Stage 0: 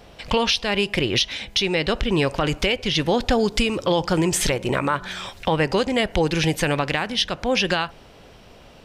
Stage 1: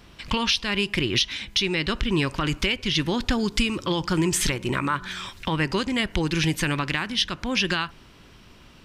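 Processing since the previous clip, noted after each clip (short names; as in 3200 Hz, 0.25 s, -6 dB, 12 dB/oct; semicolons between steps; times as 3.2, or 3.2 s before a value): band shelf 600 Hz -10 dB 1.1 oct; gain -1.5 dB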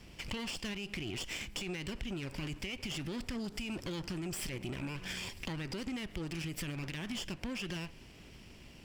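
minimum comb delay 0.39 ms; limiter -22 dBFS, peak gain reduction 11.5 dB; compressor, threshold -33 dBFS, peak gain reduction 7.5 dB; gain -3 dB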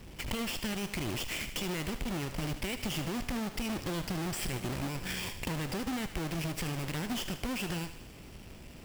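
half-waves squared off; thinning echo 76 ms, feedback 64%, high-pass 840 Hz, level -10.5 dB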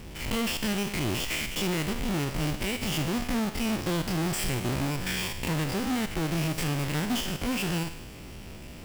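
stepped spectrum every 50 ms; gain +7.5 dB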